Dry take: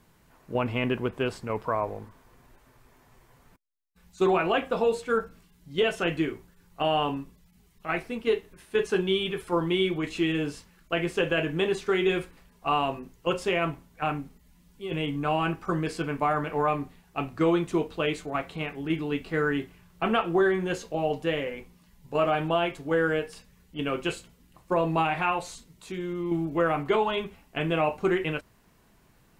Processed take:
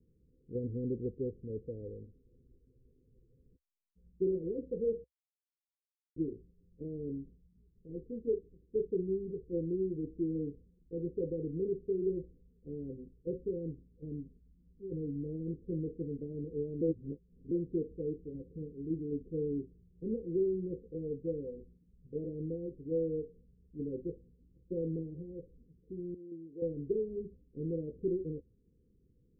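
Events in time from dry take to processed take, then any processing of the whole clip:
5.04–6.16 s: mute
16.81–17.51 s: reverse
26.14–26.62 s: band-pass filter 1.3 kHz, Q 0.83
whole clip: Chebyshev low-pass 510 Hz, order 8; peaking EQ 64 Hz +6.5 dB 0.69 oct; trim -7 dB

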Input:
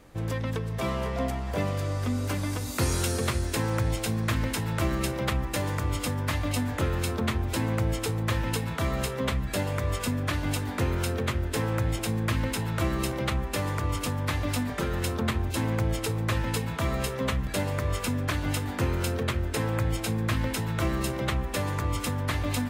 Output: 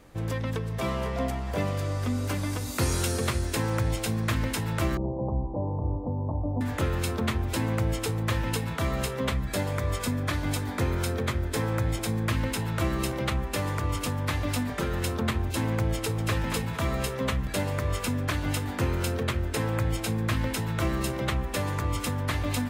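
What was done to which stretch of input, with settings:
4.97–6.61 s: steep low-pass 960 Hz 72 dB/octave
9.34–12.26 s: band-stop 2.8 kHz
15.95–16.39 s: echo throw 230 ms, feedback 30%, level -7 dB

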